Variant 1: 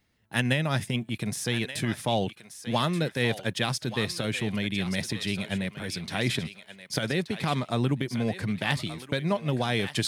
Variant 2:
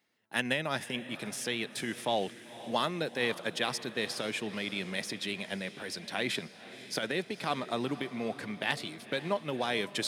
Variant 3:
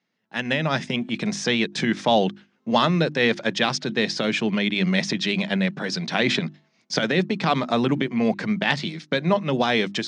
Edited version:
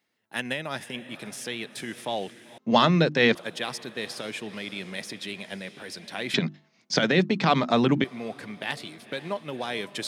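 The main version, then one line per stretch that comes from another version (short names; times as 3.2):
2
2.58–3.35 from 3
6.34–8.04 from 3
not used: 1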